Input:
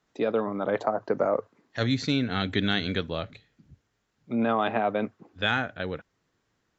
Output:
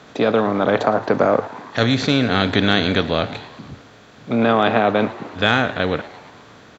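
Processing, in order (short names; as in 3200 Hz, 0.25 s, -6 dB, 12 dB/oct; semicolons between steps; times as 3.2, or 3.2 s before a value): per-bin compression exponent 0.6; frequency-shifting echo 0.113 s, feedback 63%, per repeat +140 Hz, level -19 dB; gain +6 dB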